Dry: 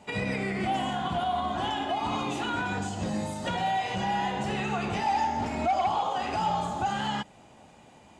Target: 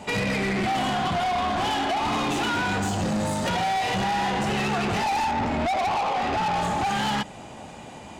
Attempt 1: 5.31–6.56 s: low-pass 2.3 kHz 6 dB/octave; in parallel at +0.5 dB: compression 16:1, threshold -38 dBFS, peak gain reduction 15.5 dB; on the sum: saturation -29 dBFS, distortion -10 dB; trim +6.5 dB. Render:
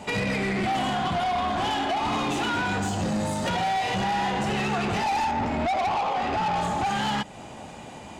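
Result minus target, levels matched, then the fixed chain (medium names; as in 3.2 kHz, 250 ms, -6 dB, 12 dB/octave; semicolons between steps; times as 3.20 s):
compression: peak gain reduction +10 dB
5.31–6.56 s: low-pass 2.3 kHz 6 dB/octave; in parallel at +0.5 dB: compression 16:1, threshold -27.5 dBFS, peak gain reduction 6 dB; on the sum: saturation -29 dBFS, distortion -8 dB; trim +6.5 dB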